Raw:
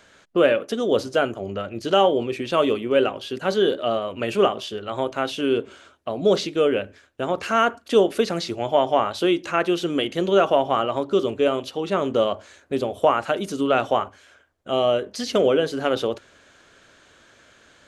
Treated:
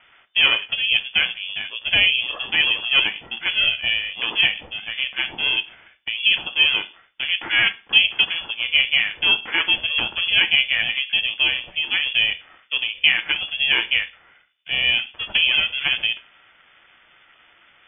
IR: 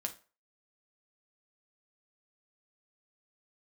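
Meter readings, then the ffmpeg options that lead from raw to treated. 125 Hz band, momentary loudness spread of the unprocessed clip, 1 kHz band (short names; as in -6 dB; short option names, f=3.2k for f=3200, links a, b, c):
-10.5 dB, 8 LU, -12.5 dB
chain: -filter_complex "[0:a]lowpass=f=2.8k:t=q:w=0.5098,lowpass=f=2.8k:t=q:w=0.6013,lowpass=f=2.8k:t=q:w=0.9,lowpass=f=2.8k:t=q:w=2.563,afreqshift=-3300,asplit=2[a][b];[1:a]atrim=start_sample=2205[c];[b][c]afir=irnorm=-1:irlink=0,volume=4dB[d];[a][d]amix=inputs=2:normalize=0,aeval=exprs='val(0)*sin(2*PI*280*n/s)':c=same,volume=-4dB"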